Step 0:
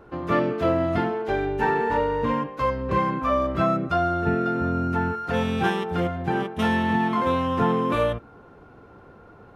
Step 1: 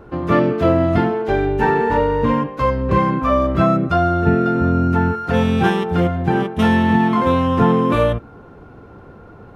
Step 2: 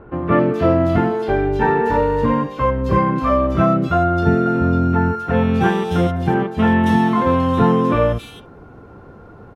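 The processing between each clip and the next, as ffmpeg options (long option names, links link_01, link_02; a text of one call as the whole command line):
ffmpeg -i in.wav -af "lowshelf=frequency=340:gain=6,volume=4.5dB" out.wav
ffmpeg -i in.wav -filter_complex "[0:a]acrossover=split=3000[link_01][link_02];[link_02]adelay=270[link_03];[link_01][link_03]amix=inputs=2:normalize=0" out.wav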